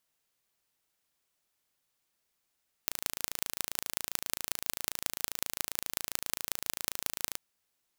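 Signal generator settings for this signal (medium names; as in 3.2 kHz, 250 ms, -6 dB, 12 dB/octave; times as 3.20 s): pulse train 27.5 per s, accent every 5, -1.5 dBFS 4.49 s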